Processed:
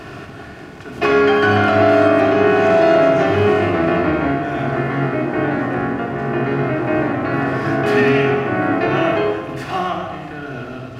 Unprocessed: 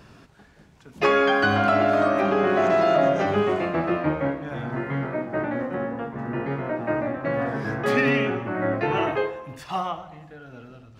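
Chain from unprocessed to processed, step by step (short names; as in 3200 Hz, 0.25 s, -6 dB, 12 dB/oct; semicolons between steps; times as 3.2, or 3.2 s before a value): per-bin compression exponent 0.6; shoebox room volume 3100 m³, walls furnished, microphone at 3.3 m; gain -1 dB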